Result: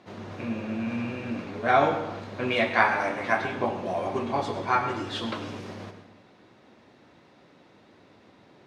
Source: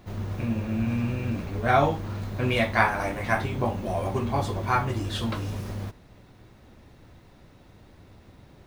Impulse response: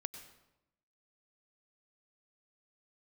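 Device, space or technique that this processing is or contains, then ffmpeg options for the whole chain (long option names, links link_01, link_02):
supermarket ceiling speaker: -filter_complex "[0:a]highpass=240,lowpass=5400[link_01];[1:a]atrim=start_sample=2205[link_02];[link_01][link_02]afir=irnorm=-1:irlink=0,volume=3dB"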